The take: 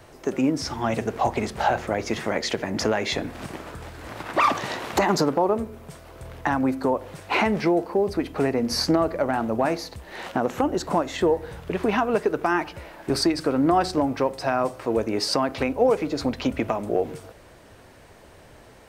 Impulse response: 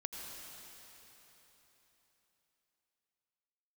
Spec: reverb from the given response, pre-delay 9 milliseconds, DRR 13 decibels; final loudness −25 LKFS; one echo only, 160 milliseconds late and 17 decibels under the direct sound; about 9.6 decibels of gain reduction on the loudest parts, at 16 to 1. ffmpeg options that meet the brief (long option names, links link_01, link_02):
-filter_complex "[0:a]acompressor=threshold=-25dB:ratio=16,aecho=1:1:160:0.141,asplit=2[link_01][link_02];[1:a]atrim=start_sample=2205,adelay=9[link_03];[link_02][link_03]afir=irnorm=-1:irlink=0,volume=-12.5dB[link_04];[link_01][link_04]amix=inputs=2:normalize=0,volume=6dB"